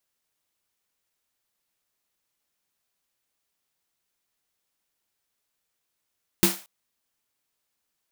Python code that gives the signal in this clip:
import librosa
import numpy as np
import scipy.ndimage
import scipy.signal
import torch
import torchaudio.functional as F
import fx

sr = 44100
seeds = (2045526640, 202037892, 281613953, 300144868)

y = fx.drum_snare(sr, seeds[0], length_s=0.23, hz=190.0, second_hz=340.0, noise_db=-1.0, noise_from_hz=510.0, decay_s=0.21, noise_decay_s=0.36)